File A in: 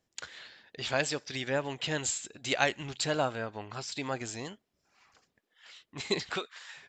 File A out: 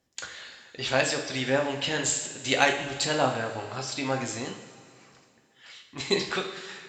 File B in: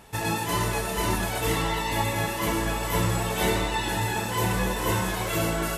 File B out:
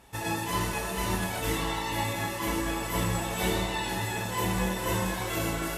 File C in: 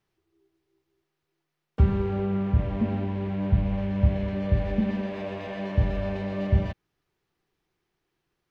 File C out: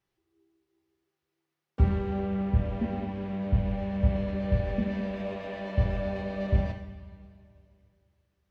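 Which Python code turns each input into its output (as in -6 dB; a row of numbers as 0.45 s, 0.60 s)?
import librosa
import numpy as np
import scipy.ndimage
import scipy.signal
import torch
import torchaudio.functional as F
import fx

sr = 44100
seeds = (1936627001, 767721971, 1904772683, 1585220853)

y = fx.rev_double_slope(x, sr, seeds[0], early_s=0.55, late_s=2.6, knee_db=-13, drr_db=2.0)
y = fx.cheby_harmonics(y, sr, harmonics=(7,), levels_db=(-34,), full_scale_db=-8.0)
y = y * 10.0 ** (-30 / 20.0) / np.sqrt(np.mean(np.square(y)))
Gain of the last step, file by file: +4.5 dB, -5.0 dB, -3.5 dB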